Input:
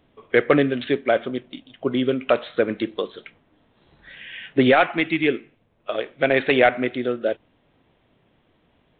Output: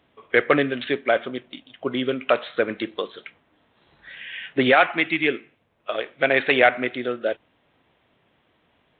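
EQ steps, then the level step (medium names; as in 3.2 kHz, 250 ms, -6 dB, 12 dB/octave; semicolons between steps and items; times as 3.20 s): high-pass 42 Hz; tilt shelf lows -5.5 dB, about 720 Hz; treble shelf 3.8 kHz -8.5 dB; 0.0 dB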